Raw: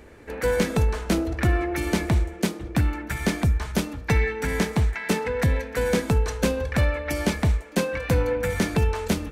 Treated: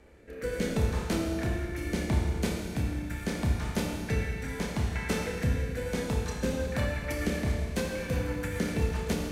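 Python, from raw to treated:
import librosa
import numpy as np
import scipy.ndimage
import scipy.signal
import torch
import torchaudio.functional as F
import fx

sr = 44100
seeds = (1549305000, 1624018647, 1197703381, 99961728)

y = fx.room_flutter(x, sr, wall_m=5.0, rt60_s=0.25)
y = fx.rotary_switch(y, sr, hz=0.75, then_hz=7.5, switch_at_s=6.1)
y = fx.rev_schroeder(y, sr, rt60_s=1.9, comb_ms=27, drr_db=1.0)
y = y * librosa.db_to_amplitude(-7.0)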